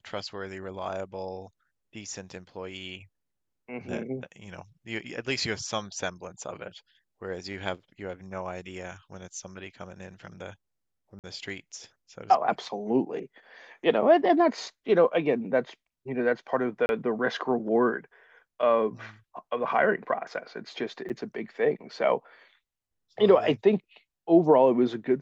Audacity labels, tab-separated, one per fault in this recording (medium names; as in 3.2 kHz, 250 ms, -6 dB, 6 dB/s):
11.190000	11.240000	dropout 48 ms
16.860000	16.890000	dropout 31 ms
21.090000	21.100000	dropout 8.2 ms